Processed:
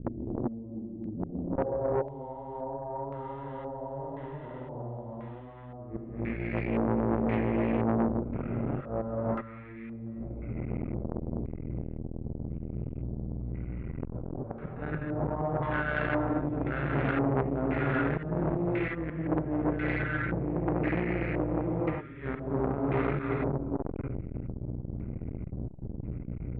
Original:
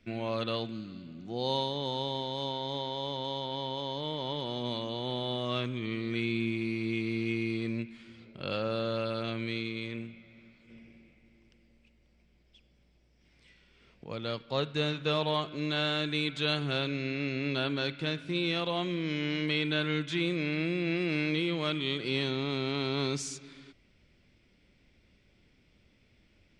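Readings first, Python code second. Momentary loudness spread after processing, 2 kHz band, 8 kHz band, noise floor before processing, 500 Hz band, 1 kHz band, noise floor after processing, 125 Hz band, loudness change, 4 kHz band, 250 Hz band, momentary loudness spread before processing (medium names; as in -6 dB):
12 LU, -1.0 dB, under -30 dB, -66 dBFS, +1.5 dB, +2.0 dB, -43 dBFS, +4.5 dB, -0.5 dB, under -20 dB, +2.5 dB, 7 LU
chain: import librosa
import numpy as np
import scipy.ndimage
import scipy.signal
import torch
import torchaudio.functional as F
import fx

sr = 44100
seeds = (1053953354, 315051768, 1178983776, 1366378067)

y = fx.wiener(x, sr, points=25)
y = fx.low_shelf(y, sr, hz=130.0, db=12.0)
y = fx.over_compress(y, sr, threshold_db=-35.0, ratio=-0.5)
y = np.repeat(y[::3], 3)[:len(y)]
y = fx.room_early_taps(y, sr, ms=(47, 57), db=(-13.0, -7.5))
y = fx.add_hum(y, sr, base_hz=60, snr_db=11)
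y = fx.gate_flip(y, sr, shuts_db=-28.0, range_db=-25)
y = fx.filter_sweep_lowpass(y, sr, from_hz=300.0, to_hz=1700.0, start_s=0.37, end_s=3.47, q=2.4)
y = fx.high_shelf(y, sr, hz=7200.0, db=-11.0)
y = fx.rev_gated(y, sr, seeds[0], gate_ms=410, shape='rising', drr_db=-6.0)
y = fx.filter_lfo_lowpass(y, sr, shape='square', hz=0.96, low_hz=770.0, high_hz=2000.0, q=2.0)
y = fx.transformer_sat(y, sr, knee_hz=760.0)
y = F.gain(torch.from_numpy(y), 8.0).numpy()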